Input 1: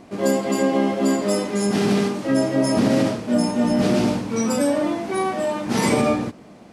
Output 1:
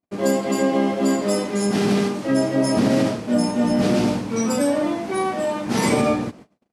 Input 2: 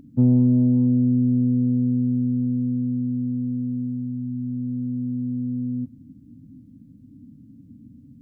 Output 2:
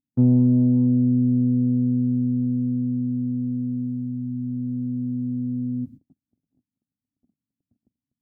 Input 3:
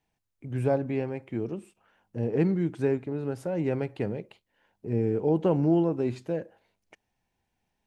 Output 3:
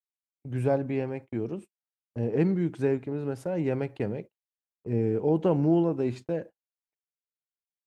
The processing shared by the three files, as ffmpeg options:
-af "agate=range=-44dB:threshold=-40dB:ratio=16:detection=peak"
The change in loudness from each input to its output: 0.0, 0.0, 0.0 LU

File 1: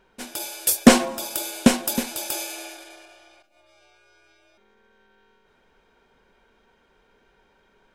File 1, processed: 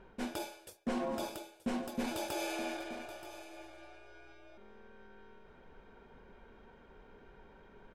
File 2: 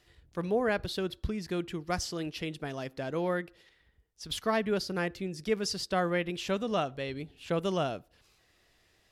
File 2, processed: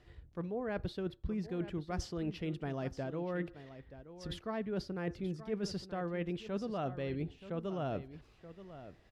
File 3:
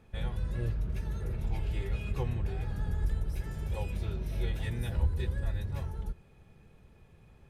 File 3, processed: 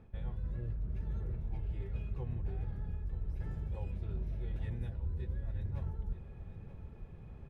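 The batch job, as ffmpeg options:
-af "lowpass=f=1.4k:p=1,lowshelf=f=240:g=5,areverse,acompressor=threshold=-37dB:ratio=16,areverse,aecho=1:1:928:0.211,volume=3.5dB"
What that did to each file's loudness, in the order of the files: -18.5, -6.5, -5.5 LU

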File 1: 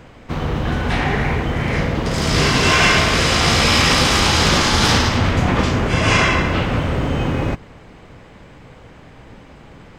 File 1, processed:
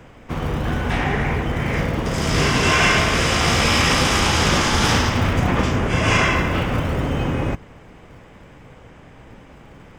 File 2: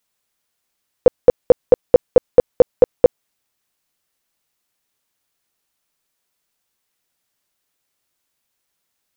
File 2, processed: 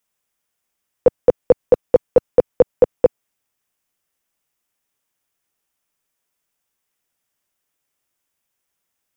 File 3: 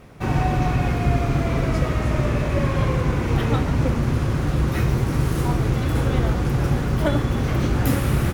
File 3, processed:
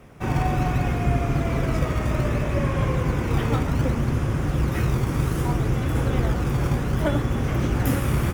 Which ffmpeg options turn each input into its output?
-filter_complex "[0:a]equalizer=f=4.2k:t=o:w=0.33:g=-8,acrossover=split=130[a][b];[a]acrusher=samples=22:mix=1:aa=0.000001:lfo=1:lforange=35.2:lforate=0.64[c];[c][b]amix=inputs=2:normalize=0,volume=-2dB"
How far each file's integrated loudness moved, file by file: -2.5, -2.0, -2.0 LU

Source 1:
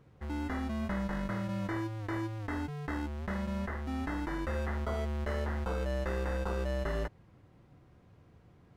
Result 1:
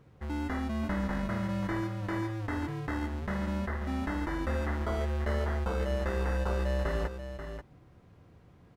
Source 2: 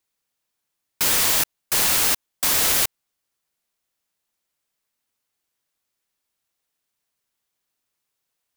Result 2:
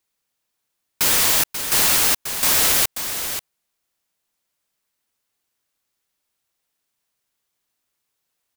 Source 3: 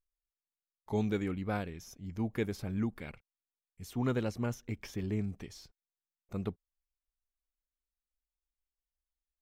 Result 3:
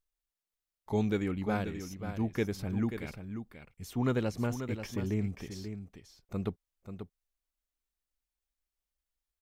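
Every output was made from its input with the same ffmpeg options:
-af "aecho=1:1:536:0.355,volume=2dB"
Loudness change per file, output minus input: +2.5, +2.0, +1.5 LU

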